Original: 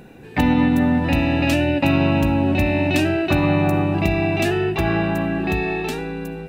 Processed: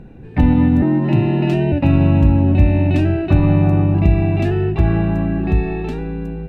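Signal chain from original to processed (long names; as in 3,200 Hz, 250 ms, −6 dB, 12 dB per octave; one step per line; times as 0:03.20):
0:00.82–0:01.72: frequency shifter +60 Hz
RIAA equalisation playback
level −4 dB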